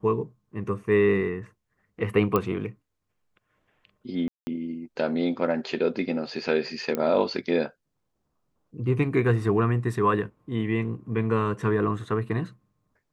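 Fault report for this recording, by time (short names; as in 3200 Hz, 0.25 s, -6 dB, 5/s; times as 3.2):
2.36 pop -11 dBFS
4.28–4.47 gap 0.19 s
6.95 pop -14 dBFS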